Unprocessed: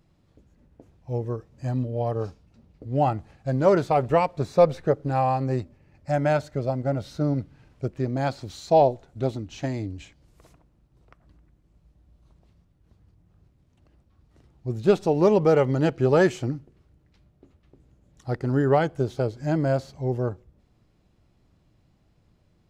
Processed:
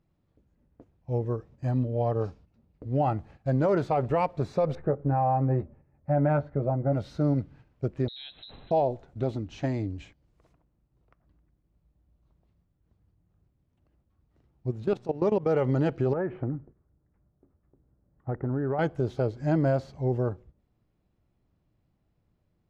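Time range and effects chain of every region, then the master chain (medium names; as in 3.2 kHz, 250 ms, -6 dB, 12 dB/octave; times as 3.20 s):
4.75–6.93 s: low-pass 1.4 kHz + doubling 14 ms -7 dB
8.08–8.71 s: compression 4:1, threshold -38 dBFS + frequency inversion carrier 4 kHz
14.70–15.50 s: level held to a coarse grid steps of 19 dB + mains buzz 120 Hz, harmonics 31, -56 dBFS -8 dB/octave
16.13–18.79 s: low-pass 1.7 kHz 24 dB/octave + compression 12:1, threshold -24 dBFS
whole clip: gate -49 dBFS, range -9 dB; low-pass 2.4 kHz 6 dB/octave; peak limiter -16.5 dBFS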